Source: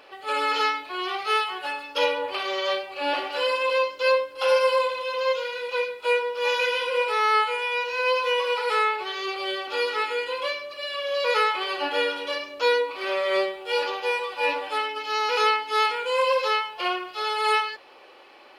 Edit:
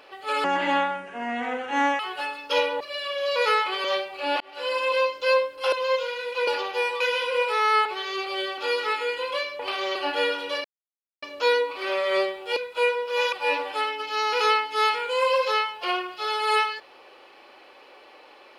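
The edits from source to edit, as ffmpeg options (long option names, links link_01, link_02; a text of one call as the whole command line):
ffmpeg -i in.wav -filter_complex "[0:a]asplit=15[link_01][link_02][link_03][link_04][link_05][link_06][link_07][link_08][link_09][link_10][link_11][link_12][link_13][link_14][link_15];[link_01]atrim=end=0.444[link_16];[link_02]atrim=start=0.44:end=1.45,asetpts=PTS-STARTPTS,asetrate=28665,aresample=44100[link_17];[link_03]atrim=start=1.446:end=2.262[link_18];[link_04]atrim=start=10.688:end=11.732[link_19];[link_05]atrim=start=2.618:end=3.18,asetpts=PTS-STARTPTS,afade=type=out:start_time=0.558:duration=0.004:curve=hsin[link_20];[link_06]atrim=start=3.18:end=4.502,asetpts=PTS-STARTPTS,afade=type=in:duration=0.42[link_21];[link_07]atrim=start=5.088:end=5.842[link_22];[link_08]atrim=start=13.758:end=14.292[link_23];[link_09]atrim=start=6.598:end=7.452[link_24];[link_10]atrim=start=8.948:end=10.692[link_25];[link_11]atrim=start=2.258:end=2.622[link_26];[link_12]atrim=start=11.728:end=12.42,asetpts=PTS-STARTPTS,afade=type=out:start_time=0.688:duration=0.004:curve=hsin,apad=pad_dur=0.58[link_27];[link_13]atrim=start=12.42:end=13.762,asetpts=PTS-STARTPTS,afade=type=in:duration=0.004:curve=hsin[link_28];[link_14]atrim=start=5.838:end=6.602[link_29];[link_15]atrim=start=14.288[link_30];[link_16][link_17]acrossfade=duration=0.004:curve1=hsin:curve2=hsin[link_31];[link_31][link_18]acrossfade=duration=0.004:curve1=hsin:curve2=hsin[link_32];[link_32][link_19]acrossfade=duration=0.004:curve1=hsin:curve2=hsin[link_33];[link_20][link_21]concat=n=2:v=0:a=1[link_34];[link_33][link_34]acrossfade=duration=0.004:curve1=hsin:curve2=hsin[link_35];[link_35][link_22]acrossfade=duration=0.004:curve1=hsin:curve2=hsin[link_36];[link_36][link_23]acrossfade=duration=0.004:curve1=hsin:curve2=hsin[link_37];[link_37][link_24]acrossfade=duration=0.004:curve1=hsin:curve2=hsin[link_38];[link_38][link_25]acrossfade=duration=0.004:curve1=hsin:curve2=hsin[link_39];[link_39][link_26]acrossfade=duration=0.004:curve1=hsin:curve2=hsin[link_40];[link_27][link_28]concat=n=2:v=0:a=1[link_41];[link_40][link_41]acrossfade=duration=0.004:curve1=hsin:curve2=hsin[link_42];[link_42][link_29]acrossfade=duration=0.004:curve1=hsin:curve2=hsin[link_43];[link_43][link_30]acrossfade=duration=0.004:curve1=hsin:curve2=hsin" out.wav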